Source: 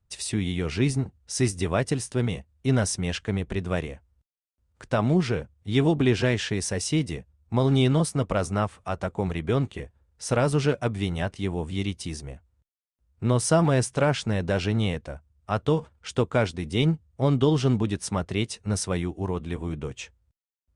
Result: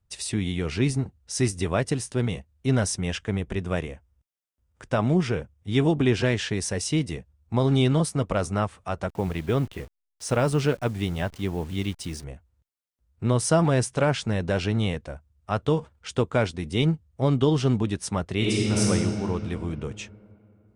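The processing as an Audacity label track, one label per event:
2.970000	6.160000	notch 4200 Hz, Q 7.2
9.090000	12.240000	level-crossing sampler step -45 dBFS
18.360000	18.820000	reverb throw, RT60 3 s, DRR -6 dB

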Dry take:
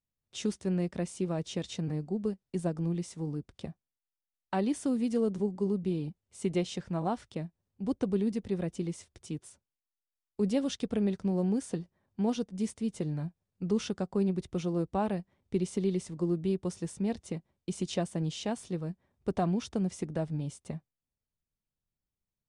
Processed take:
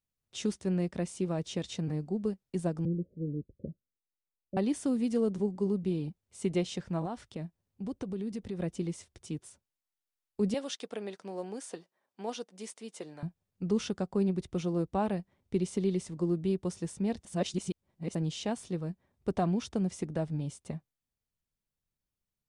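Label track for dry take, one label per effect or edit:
2.850000	4.570000	steep low-pass 590 Hz 96 dB/oct
7.050000	8.600000	compressor 3:1, threshold -34 dBFS
10.540000	13.230000	HPF 510 Hz
17.250000	18.150000	reverse

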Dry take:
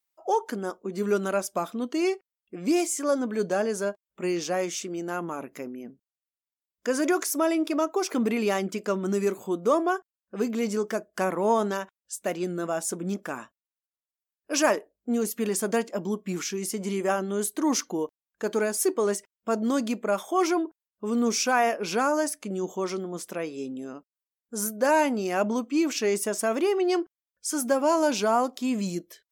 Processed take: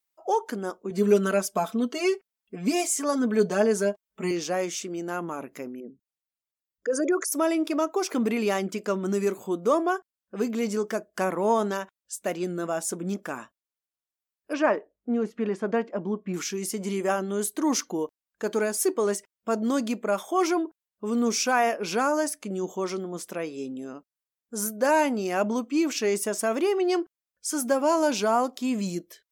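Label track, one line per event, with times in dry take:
0.900000	4.310000	comb 4.6 ms, depth 95%
5.800000	7.320000	formant sharpening exponent 2
14.530000	16.340000	LPF 2100 Hz

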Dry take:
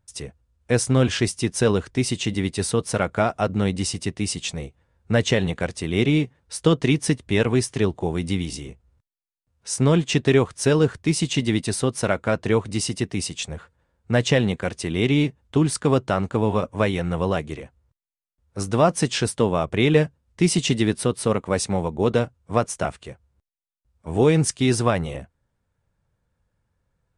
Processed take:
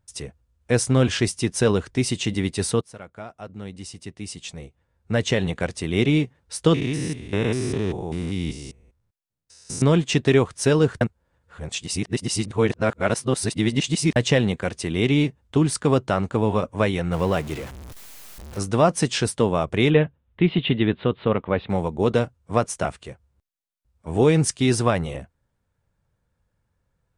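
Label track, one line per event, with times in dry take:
2.810000	5.620000	fade in quadratic, from -18 dB
6.740000	9.820000	stepped spectrum every 0.2 s
11.010000	14.160000	reverse
17.120000	18.590000	zero-crossing step of -33 dBFS
19.900000	21.700000	steep low-pass 3700 Hz 72 dB/oct

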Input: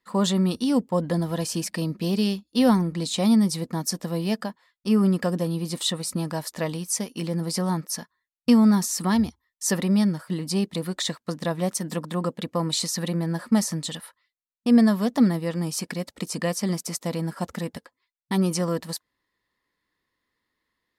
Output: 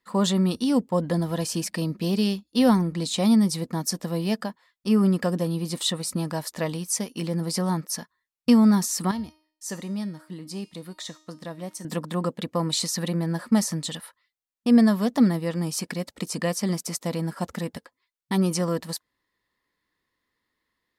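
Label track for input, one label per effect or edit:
9.110000	11.850000	resonator 310 Hz, decay 0.51 s, mix 70%

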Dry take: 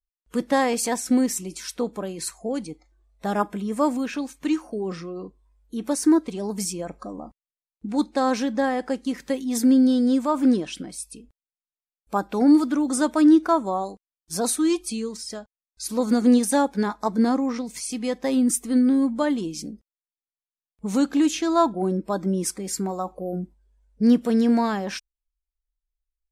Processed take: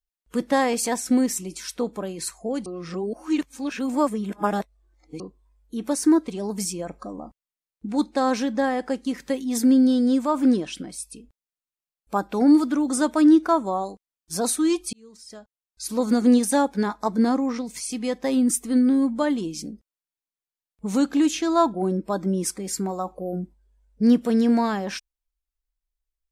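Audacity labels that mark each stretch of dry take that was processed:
2.660000	5.200000	reverse
14.930000	15.920000	fade in

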